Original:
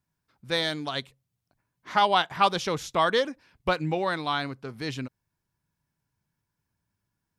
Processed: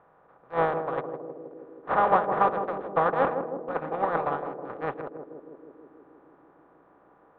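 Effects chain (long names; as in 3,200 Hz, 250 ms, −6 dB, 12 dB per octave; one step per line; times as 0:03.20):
compressor on every frequency bin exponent 0.2
in parallel at −3.5 dB: soft clipping −14.5 dBFS, distortion −11 dB
on the sum: brickwall limiter −6 dBFS, peak gain reduction 5.5 dB
low-pass filter 1,800 Hz 24 dB per octave
parametric band 590 Hz +3 dB 1.4 octaves
noise gate −11 dBFS, range −39 dB
on a send: feedback echo with a band-pass in the loop 159 ms, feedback 83%, band-pass 310 Hz, level −4 dB
on the sum: de-essing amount 95%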